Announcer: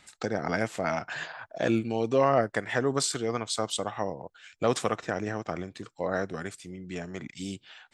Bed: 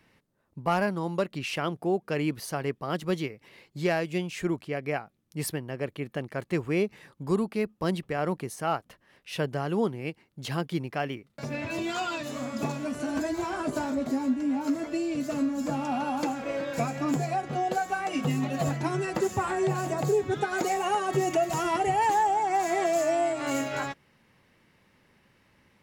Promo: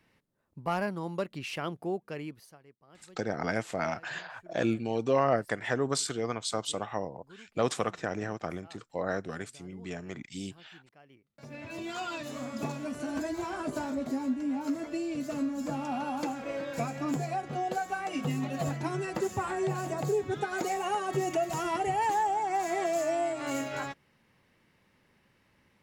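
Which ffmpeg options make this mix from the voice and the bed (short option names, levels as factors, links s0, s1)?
-filter_complex "[0:a]adelay=2950,volume=0.75[s0];[1:a]volume=8.41,afade=t=out:st=1.79:d=0.8:silence=0.0749894,afade=t=in:st=11.07:d=1.13:silence=0.0668344[s1];[s0][s1]amix=inputs=2:normalize=0"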